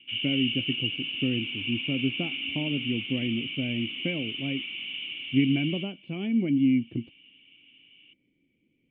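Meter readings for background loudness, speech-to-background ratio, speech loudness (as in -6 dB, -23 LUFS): -31.5 LUFS, 2.0 dB, -29.5 LUFS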